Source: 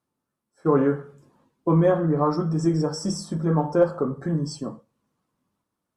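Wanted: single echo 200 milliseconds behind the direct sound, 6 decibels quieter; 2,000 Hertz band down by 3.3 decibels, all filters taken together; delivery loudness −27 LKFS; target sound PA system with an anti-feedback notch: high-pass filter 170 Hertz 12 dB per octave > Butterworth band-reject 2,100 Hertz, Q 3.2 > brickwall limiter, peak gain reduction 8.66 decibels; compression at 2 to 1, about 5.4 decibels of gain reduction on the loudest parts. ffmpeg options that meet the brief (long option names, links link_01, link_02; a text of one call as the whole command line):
ffmpeg -i in.wav -af "equalizer=frequency=2000:width_type=o:gain=-4,acompressor=threshold=-24dB:ratio=2,highpass=170,asuperstop=centerf=2100:order=8:qfactor=3.2,aecho=1:1:200:0.501,volume=3.5dB,alimiter=limit=-17.5dB:level=0:latency=1" out.wav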